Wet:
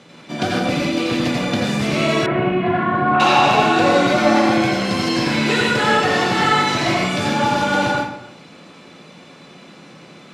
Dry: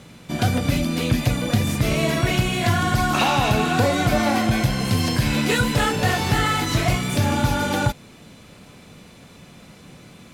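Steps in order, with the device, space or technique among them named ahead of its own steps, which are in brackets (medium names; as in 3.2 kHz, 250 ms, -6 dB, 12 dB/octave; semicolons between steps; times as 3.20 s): supermarket ceiling speaker (band-pass 220–5900 Hz; reverberation RT60 0.80 s, pre-delay 79 ms, DRR -3 dB); 2.26–3.20 s: Bessel low-pass 1.5 kHz, order 4; trim +1 dB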